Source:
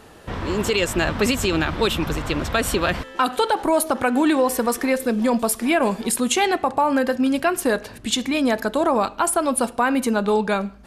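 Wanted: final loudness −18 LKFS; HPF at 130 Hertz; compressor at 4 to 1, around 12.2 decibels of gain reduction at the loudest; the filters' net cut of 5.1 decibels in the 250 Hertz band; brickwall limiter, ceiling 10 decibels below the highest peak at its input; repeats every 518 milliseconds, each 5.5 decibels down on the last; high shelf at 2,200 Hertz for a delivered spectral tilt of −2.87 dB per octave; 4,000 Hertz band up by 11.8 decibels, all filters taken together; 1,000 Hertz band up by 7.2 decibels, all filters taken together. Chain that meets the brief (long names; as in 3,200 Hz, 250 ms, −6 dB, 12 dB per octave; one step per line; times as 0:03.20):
high-pass filter 130 Hz
parametric band 250 Hz −6.5 dB
parametric band 1,000 Hz +7.5 dB
high-shelf EQ 2,200 Hz +7.5 dB
parametric band 4,000 Hz +7.5 dB
downward compressor 4 to 1, threshold −22 dBFS
brickwall limiter −15.5 dBFS
repeating echo 518 ms, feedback 53%, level −5.5 dB
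level +7 dB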